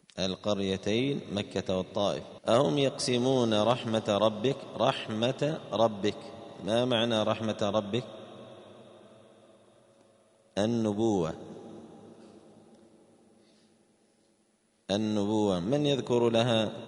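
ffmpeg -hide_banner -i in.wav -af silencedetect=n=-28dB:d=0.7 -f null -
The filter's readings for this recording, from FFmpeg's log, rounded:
silence_start: 8.00
silence_end: 10.57 | silence_duration: 2.57
silence_start: 11.31
silence_end: 14.90 | silence_duration: 3.59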